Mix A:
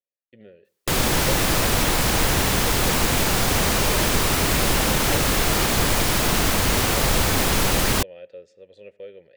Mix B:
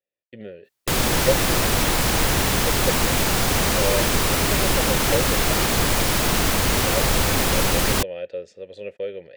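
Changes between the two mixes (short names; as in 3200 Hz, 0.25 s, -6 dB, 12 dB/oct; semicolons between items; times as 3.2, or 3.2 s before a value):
speech +10.5 dB; reverb: off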